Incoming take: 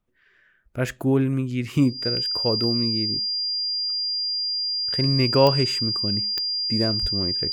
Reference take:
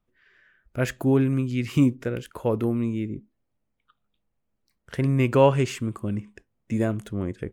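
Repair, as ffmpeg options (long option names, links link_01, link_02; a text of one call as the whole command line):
ffmpeg -i in.wav -filter_complex "[0:a]adeclick=threshold=4,bandreject=frequency=4800:width=30,asplit=3[link_01][link_02][link_03];[link_01]afade=type=out:start_time=7.01:duration=0.02[link_04];[link_02]highpass=frequency=140:width=0.5412,highpass=frequency=140:width=1.3066,afade=type=in:start_time=7.01:duration=0.02,afade=type=out:start_time=7.13:duration=0.02[link_05];[link_03]afade=type=in:start_time=7.13:duration=0.02[link_06];[link_04][link_05][link_06]amix=inputs=3:normalize=0" out.wav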